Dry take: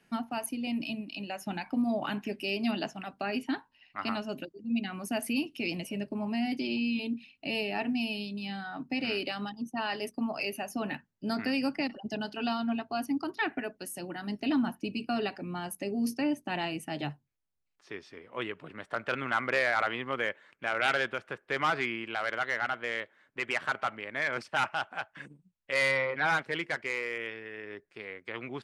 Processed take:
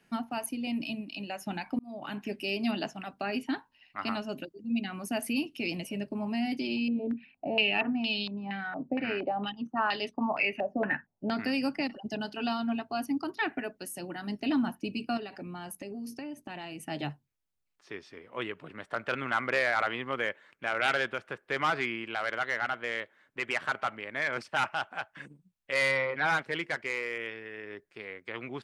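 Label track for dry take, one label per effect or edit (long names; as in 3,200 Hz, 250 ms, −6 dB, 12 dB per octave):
1.790000	2.320000	fade in
6.880000	11.370000	low-pass on a step sequencer 4.3 Hz 570–3,800 Hz
15.170000	16.870000	downward compressor 10 to 1, threshold −36 dBFS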